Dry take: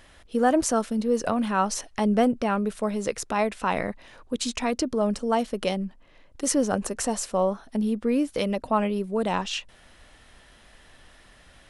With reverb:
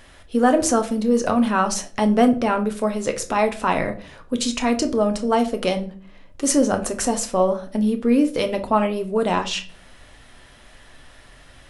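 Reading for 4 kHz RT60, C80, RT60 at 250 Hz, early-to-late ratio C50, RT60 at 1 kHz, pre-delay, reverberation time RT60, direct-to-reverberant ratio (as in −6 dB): 0.30 s, 19.0 dB, 0.70 s, 14.0 dB, 0.40 s, 7 ms, 0.45 s, 5.5 dB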